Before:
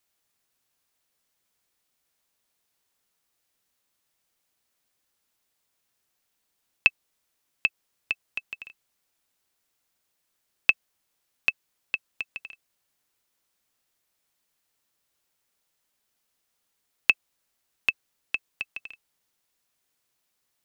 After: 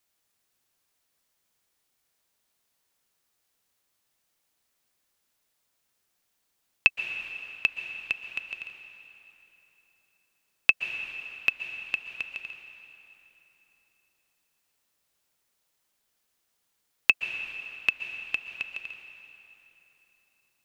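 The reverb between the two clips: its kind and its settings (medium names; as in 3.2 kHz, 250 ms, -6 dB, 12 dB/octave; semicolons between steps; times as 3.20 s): plate-style reverb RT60 3.5 s, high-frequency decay 0.8×, pre-delay 110 ms, DRR 7 dB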